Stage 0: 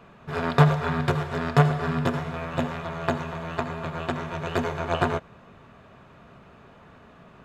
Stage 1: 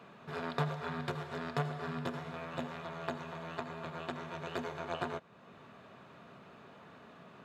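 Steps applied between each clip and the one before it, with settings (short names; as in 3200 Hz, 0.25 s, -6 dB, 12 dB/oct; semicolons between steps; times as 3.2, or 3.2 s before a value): HPF 150 Hz 12 dB/oct; bell 4000 Hz +3.5 dB 0.57 oct; compressor 1.5:1, threshold -48 dBFS, peak gain reduction 12.5 dB; gain -3 dB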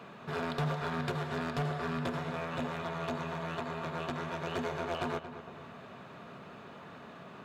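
in parallel at -1 dB: limiter -29 dBFS, peak gain reduction 11 dB; on the sum: hard clip -27.5 dBFS, distortion -14 dB; darkening echo 0.228 s, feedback 52%, low-pass 2900 Hz, level -11 dB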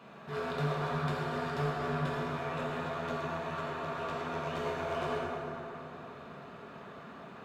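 plate-style reverb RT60 3.1 s, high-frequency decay 0.5×, DRR -5.5 dB; gain -6 dB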